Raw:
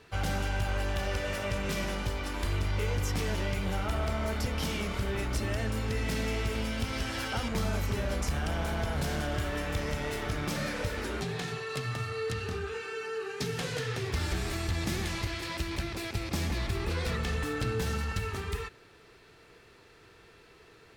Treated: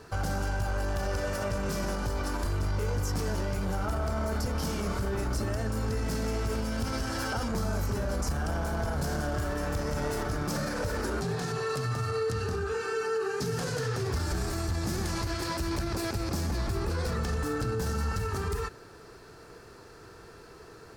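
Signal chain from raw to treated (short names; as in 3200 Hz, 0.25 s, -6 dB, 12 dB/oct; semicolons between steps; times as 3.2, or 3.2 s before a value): band shelf 2700 Hz -10 dB 1.2 oct; limiter -31 dBFS, peak gain reduction 9.5 dB; gain +8 dB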